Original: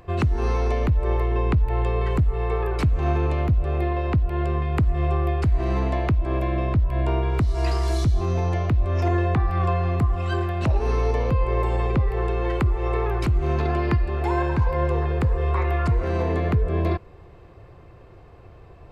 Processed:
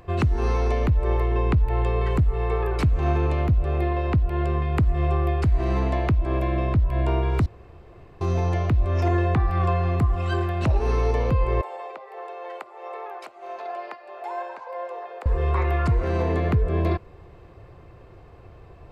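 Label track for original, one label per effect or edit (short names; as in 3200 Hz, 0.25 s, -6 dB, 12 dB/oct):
7.460000	8.210000	room tone
11.610000	15.260000	ladder high-pass 550 Hz, resonance 55%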